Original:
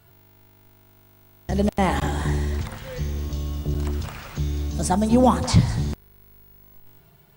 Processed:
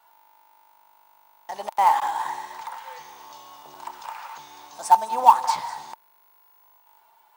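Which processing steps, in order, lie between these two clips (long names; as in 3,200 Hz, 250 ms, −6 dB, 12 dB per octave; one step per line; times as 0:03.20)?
high-pass with resonance 900 Hz, resonance Q 9.8
in parallel at −9 dB: log-companded quantiser 4 bits
on the sum: level −8.5 dB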